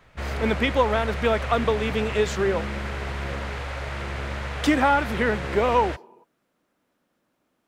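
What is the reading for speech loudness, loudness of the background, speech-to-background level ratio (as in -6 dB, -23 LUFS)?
-24.0 LUFS, -31.0 LUFS, 7.0 dB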